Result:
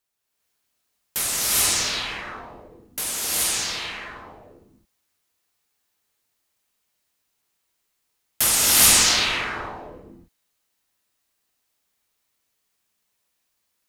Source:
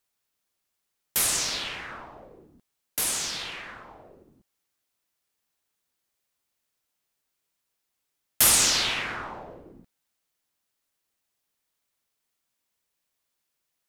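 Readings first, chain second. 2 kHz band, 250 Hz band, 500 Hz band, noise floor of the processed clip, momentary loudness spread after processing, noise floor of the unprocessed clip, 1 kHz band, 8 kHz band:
+6.0 dB, +6.0 dB, +5.0 dB, -75 dBFS, 22 LU, -81 dBFS, +6.0 dB, +6.0 dB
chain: gated-style reverb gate 450 ms rising, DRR -6.5 dB; trim -1.5 dB

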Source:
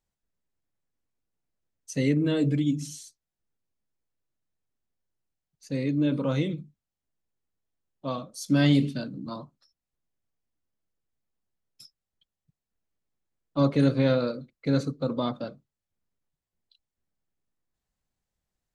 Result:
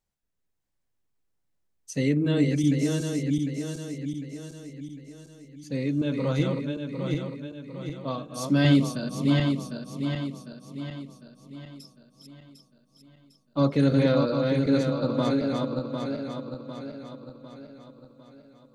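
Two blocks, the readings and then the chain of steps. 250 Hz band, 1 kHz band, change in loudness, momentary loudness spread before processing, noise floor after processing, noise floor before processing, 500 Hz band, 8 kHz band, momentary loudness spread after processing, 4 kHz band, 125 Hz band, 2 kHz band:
+3.0 dB, +3.0 dB, 0.0 dB, 16 LU, -75 dBFS, under -85 dBFS, +3.0 dB, +3.0 dB, 20 LU, +3.0 dB, +3.0 dB, +3.0 dB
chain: backward echo that repeats 376 ms, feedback 68%, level -3 dB

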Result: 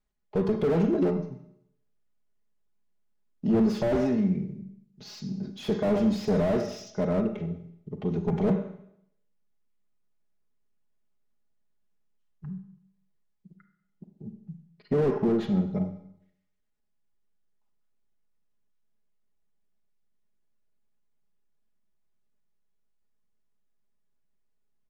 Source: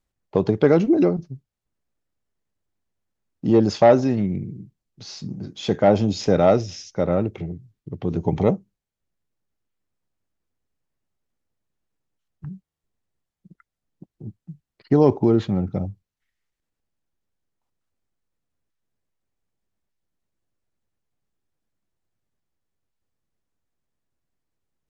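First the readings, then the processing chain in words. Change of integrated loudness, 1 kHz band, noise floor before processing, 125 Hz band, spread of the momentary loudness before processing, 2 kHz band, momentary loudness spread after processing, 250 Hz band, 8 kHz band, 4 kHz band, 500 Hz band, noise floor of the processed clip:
-7.0 dB, -11.5 dB, under -85 dBFS, -6.0 dB, 19 LU, -7.5 dB, 20 LU, -4.5 dB, no reading, -8.5 dB, -8.0 dB, -73 dBFS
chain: treble shelf 5.2 kHz -5.5 dB; comb 4.8 ms, depth 73%; saturation -10.5 dBFS, distortion -13 dB; Schroeder reverb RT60 0.71 s, combs from 32 ms, DRR 7.5 dB; slew-rate limiter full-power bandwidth 69 Hz; trim -5.5 dB

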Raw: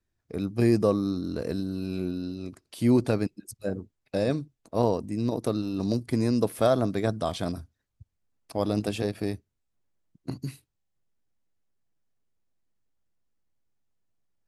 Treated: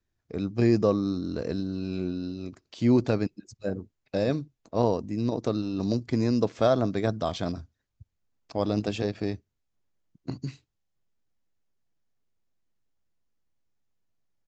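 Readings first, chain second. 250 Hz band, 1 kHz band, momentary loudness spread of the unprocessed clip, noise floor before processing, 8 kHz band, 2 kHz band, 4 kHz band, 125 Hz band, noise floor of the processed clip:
0.0 dB, 0.0 dB, 14 LU, -80 dBFS, -5.0 dB, 0.0 dB, 0.0 dB, 0.0 dB, -80 dBFS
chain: resampled via 16 kHz

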